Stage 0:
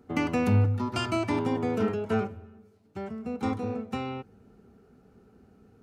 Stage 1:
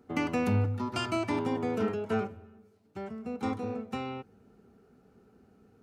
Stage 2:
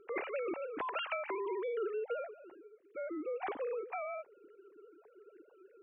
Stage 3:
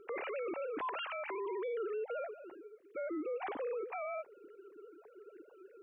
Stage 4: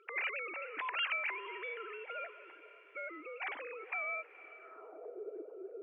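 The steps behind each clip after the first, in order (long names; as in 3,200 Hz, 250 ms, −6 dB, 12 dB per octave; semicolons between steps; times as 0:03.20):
low-shelf EQ 120 Hz −6 dB; level −2 dB
three sine waves on the formant tracks; downward compressor 6 to 1, threshold −35 dBFS, peak gain reduction 12.5 dB
brickwall limiter −36.5 dBFS, peak gain reduction 11 dB; level +3.5 dB
feedback delay with all-pass diffusion 478 ms, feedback 52%, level −16 dB; band-pass filter sweep 2,300 Hz → 450 Hz, 0:04.57–0:05.10; level +11 dB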